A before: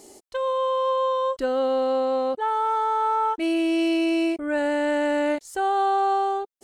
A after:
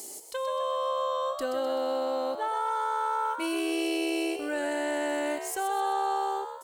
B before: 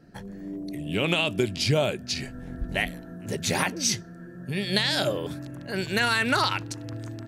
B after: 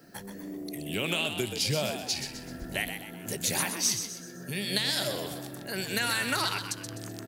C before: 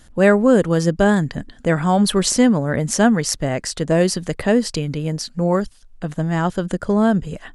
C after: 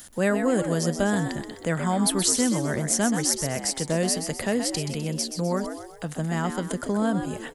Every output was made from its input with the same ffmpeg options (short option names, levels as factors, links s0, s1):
-filter_complex "[0:a]aemphasis=mode=production:type=bsi,acrossover=split=170[s0][s1];[s1]acompressor=threshold=0.00398:ratio=1.5[s2];[s0][s2]amix=inputs=2:normalize=0,asplit=6[s3][s4][s5][s6][s7][s8];[s4]adelay=127,afreqshift=73,volume=0.398[s9];[s5]adelay=254,afreqshift=146,volume=0.176[s10];[s6]adelay=381,afreqshift=219,volume=0.0767[s11];[s7]adelay=508,afreqshift=292,volume=0.0339[s12];[s8]adelay=635,afreqshift=365,volume=0.015[s13];[s3][s9][s10][s11][s12][s13]amix=inputs=6:normalize=0,volume=1.41"